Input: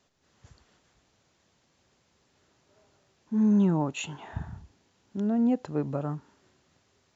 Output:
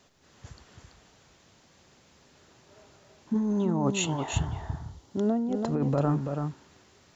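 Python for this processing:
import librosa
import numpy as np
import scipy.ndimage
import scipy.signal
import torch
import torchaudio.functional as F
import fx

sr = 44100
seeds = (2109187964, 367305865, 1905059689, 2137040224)

y = fx.graphic_eq_31(x, sr, hz=(200, 1600, 2500), db=(-9, -7, -8), at=(3.34, 5.71))
y = fx.over_compress(y, sr, threshold_db=-31.0, ratio=-1.0)
y = y + 10.0 ** (-6.0 / 20.0) * np.pad(y, (int(332 * sr / 1000.0), 0))[:len(y)]
y = y * 10.0 ** (5.5 / 20.0)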